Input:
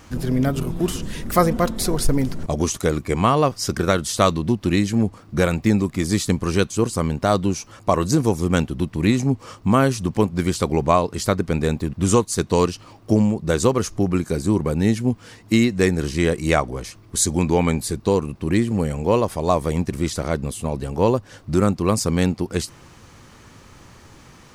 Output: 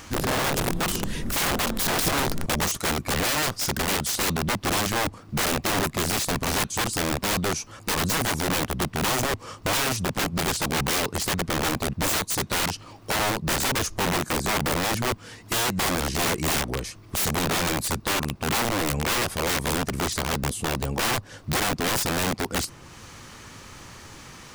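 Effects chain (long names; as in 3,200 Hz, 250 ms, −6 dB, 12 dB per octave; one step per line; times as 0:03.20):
wrap-around overflow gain 19 dB
one half of a high-frequency compander encoder only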